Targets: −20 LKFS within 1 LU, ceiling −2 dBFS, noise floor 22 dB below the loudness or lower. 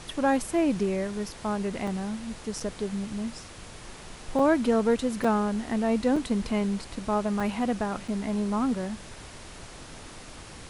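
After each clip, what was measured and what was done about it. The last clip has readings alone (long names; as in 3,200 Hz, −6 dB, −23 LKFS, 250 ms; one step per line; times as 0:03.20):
number of dropouts 7; longest dropout 4.5 ms; background noise floor −45 dBFS; target noise floor −50 dBFS; integrated loudness −28.0 LKFS; sample peak −11.5 dBFS; target loudness −20.0 LKFS
→ repair the gap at 0:01.87/0:02.60/0:04.39/0:05.24/0:06.16/0:07.40/0:08.08, 4.5 ms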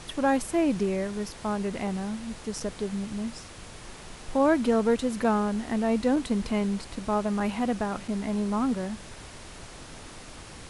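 number of dropouts 0; background noise floor −45 dBFS; target noise floor −50 dBFS
→ noise reduction from a noise print 6 dB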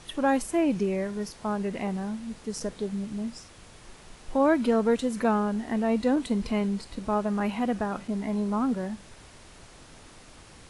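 background noise floor −51 dBFS; integrated loudness −28.0 LKFS; sample peak −12.0 dBFS; target loudness −20.0 LKFS
→ level +8 dB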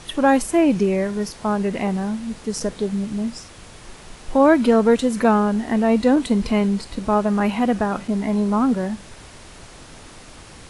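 integrated loudness −20.0 LKFS; sample peak −4.0 dBFS; background noise floor −43 dBFS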